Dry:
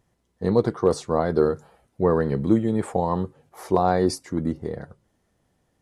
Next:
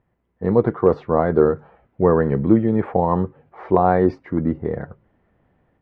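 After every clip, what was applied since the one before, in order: LPF 2400 Hz 24 dB/oct; AGC gain up to 7 dB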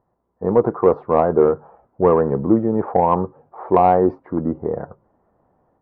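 resonant high shelf 1500 Hz -12 dB, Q 1.5; overdrive pedal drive 11 dB, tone 1200 Hz, clips at -0.5 dBFS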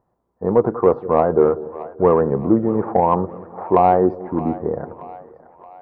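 split-band echo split 550 Hz, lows 0.19 s, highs 0.624 s, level -16 dB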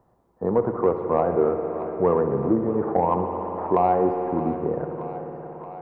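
spring tank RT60 2.9 s, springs 57 ms, chirp 60 ms, DRR 6.5 dB; three-band squash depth 40%; gain -6 dB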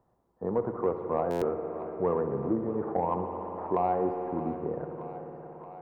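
stuck buffer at 1.3, samples 512, times 9; gain -7.5 dB

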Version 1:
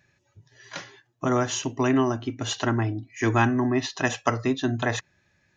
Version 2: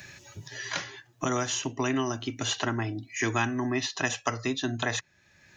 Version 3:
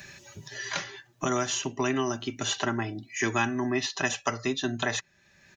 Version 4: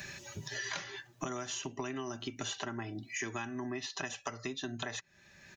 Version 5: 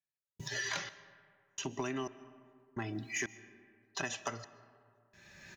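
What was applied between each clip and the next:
high shelf 2100 Hz +10 dB; three-band squash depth 70%; gain -6.5 dB
comb 5.1 ms, depth 37%
compressor 10:1, threshold -37 dBFS, peak gain reduction 16 dB; gain +1.5 dB
step gate "....xxxxx..." 152 bpm -60 dB; in parallel at -7 dB: hard clip -34.5 dBFS, distortion -12 dB; on the sum: reverb RT60 2.2 s, pre-delay 90 ms, DRR 16.5 dB; gain -1 dB

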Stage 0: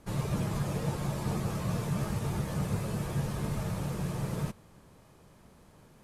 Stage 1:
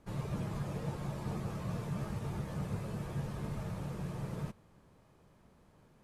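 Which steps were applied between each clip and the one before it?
high shelf 4600 Hz -7.5 dB; gain -6 dB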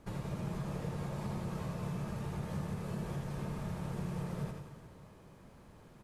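compressor, threshold -42 dBFS, peak gain reduction 10 dB; reverse bouncing-ball echo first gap 80 ms, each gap 1.2×, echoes 5; gain +4.5 dB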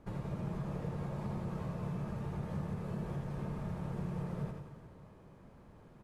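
high shelf 2700 Hz -10.5 dB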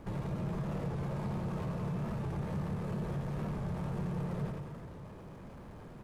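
power-law curve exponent 0.7; record warp 45 rpm, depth 100 cents

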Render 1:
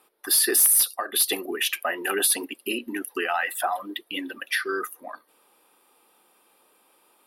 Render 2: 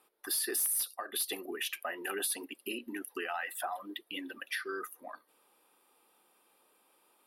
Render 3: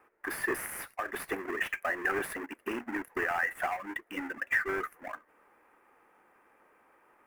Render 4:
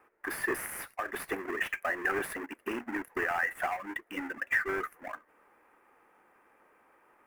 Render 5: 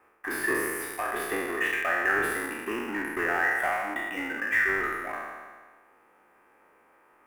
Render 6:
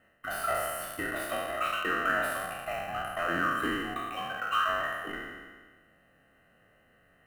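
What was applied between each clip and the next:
compressor 1.5:1, threshold -33 dBFS, peak gain reduction 6.5 dB; gain -7 dB
half-waves squared off; resonant high shelf 2700 Hz -12.5 dB, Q 3
nothing audible
spectral trails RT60 1.54 s
band inversion scrambler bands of 1000 Hz; gain -3 dB

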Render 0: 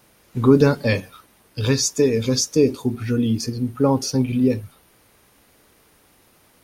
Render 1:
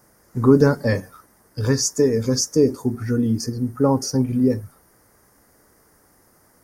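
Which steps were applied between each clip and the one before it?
band shelf 3100 Hz -16 dB 1 oct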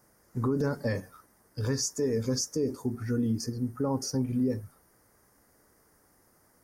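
limiter -12.5 dBFS, peak gain reduction 9.5 dB; gain -7.5 dB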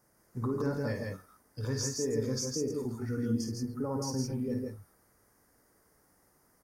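tapped delay 53/143/164 ms -7/-7.5/-4 dB; gain -5.5 dB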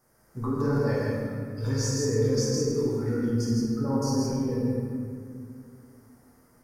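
reverb RT60 2.3 s, pre-delay 6 ms, DRR -5.5 dB

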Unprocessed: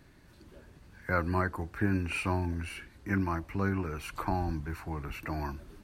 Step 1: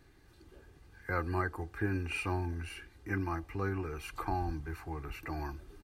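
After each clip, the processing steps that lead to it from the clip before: comb 2.5 ms, depth 52%; gain -4.5 dB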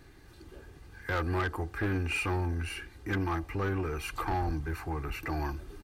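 soft clip -32 dBFS, distortion -11 dB; gain +7 dB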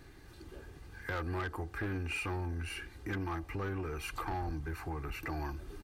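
compressor 2:1, threshold -39 dBFS, peak gain reduction 6.5 dB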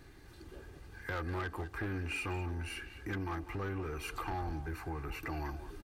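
speakerphone echo 0.2 s, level -10 dB; gain -1 dB

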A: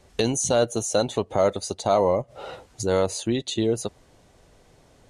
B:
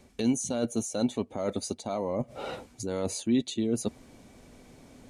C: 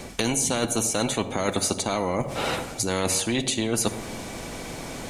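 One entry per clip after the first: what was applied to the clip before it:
high shelf 9600 Hz +6.5 dB; reverse; compressor 5:1, threshold -31 dBFS, peak gain reduction 14 dB; reverse; small resonant body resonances 240/2300 Hz, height 13 dB, ringing for 45 ms
dynamic EQ 4400 Hz, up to -5 dB, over -53 dBFS, Q 0.98; reverb RT60 0.85 s, pre-delay 6 ms, DRR 12 dB; spectral compressor 2:1; gain +6.5 dB

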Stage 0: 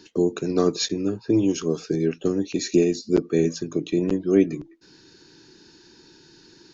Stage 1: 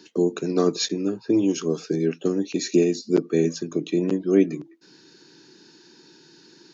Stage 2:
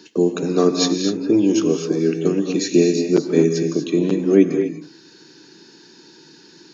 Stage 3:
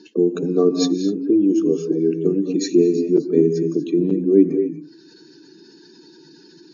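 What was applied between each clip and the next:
HPF 140 Hz 24 dB/oct
non-linear reverb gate 0.27 s rising, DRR 5 dB; gain +4 dB
spectral contrast raised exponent 1.6

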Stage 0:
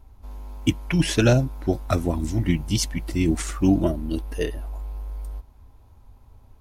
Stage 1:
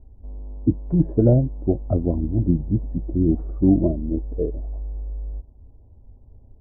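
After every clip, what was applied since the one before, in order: inverse Chebyshev low-pass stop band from 2700 Hz, stop band 70 dB; gain +2.5 dB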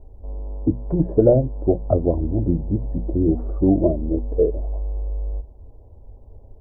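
notches 60/120/180/240 Hz; in parallel at 0 dB: compressor, threshold -25 dBFS, peak gain reduction 13.5 dB; on the sum: ten-band EQ 125 Hz -3 dB, 250 Hz -4 dB, 500 Hz +7 dB, 1000 Hz +3 dB; gain -1 dB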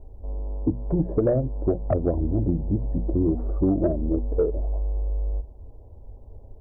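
compressor 4:1, threshold -17 dBFS, peak gain reduction 7.5 dB; soft clip -10 dBFS, distortion -24 dB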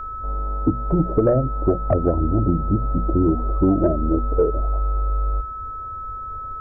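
whine 1300 Hz -33 dBFS; gain +4 dB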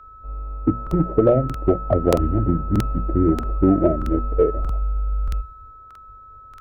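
added harmonics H 7 -35 dB, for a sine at -6 dBFS; crackling interface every 0.63 s, samples 2048, repeat, from 0.82; three-band expander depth 70%

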